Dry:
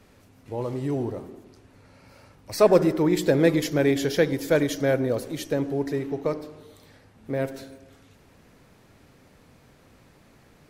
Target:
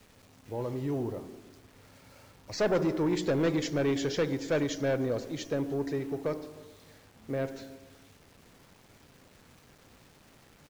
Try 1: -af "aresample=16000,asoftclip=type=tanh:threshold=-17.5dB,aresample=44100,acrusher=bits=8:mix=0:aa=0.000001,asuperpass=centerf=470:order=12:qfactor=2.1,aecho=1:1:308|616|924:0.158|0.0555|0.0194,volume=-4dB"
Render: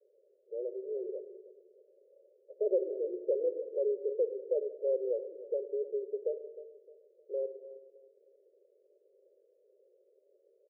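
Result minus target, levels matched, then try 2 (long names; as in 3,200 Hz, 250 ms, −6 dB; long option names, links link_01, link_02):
echo-to-direct +9.5 dB; 500 Hz band +3.0 dB
-af "aresample=16000,asoftclip=type=tanh:threshold=-17.5dB,aresample=44100,acrusher=bits=8:mix=0:aa=0.000001,aecho=1:1:308|616:0.0531|0.0186,volume=-4dB"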